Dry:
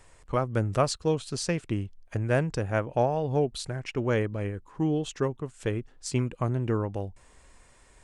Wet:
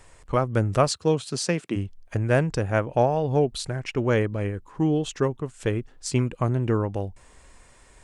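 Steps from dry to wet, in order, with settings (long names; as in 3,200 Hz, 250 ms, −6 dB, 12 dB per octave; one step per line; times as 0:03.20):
0:00.87–0:01.75: high-pass filter 74 Hz → 190 Hz 24 dB per octave
level +4 dB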